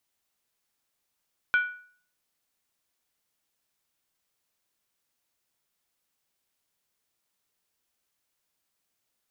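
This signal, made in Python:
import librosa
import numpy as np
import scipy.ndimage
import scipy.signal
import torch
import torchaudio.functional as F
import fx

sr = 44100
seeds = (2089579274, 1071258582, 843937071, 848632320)

y = fx.strike_skin(sr, length_s=0.63, level_db=-17.0, hz=1470.0, decay_s=0.5, tilt_db=10.5, modes=5)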